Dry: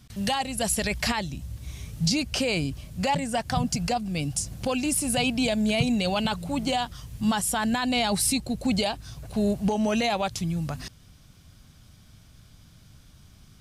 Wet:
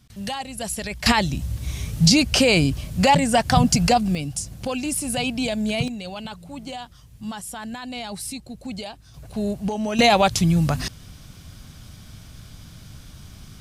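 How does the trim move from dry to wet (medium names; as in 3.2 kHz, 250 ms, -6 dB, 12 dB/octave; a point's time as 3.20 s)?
-3 dB
from 1.06 s +9 dB
from 4.15 s 0 dB
from 5.88 s -8 dB
from 9.14 s -1 dB
from 9.99 s +10 dB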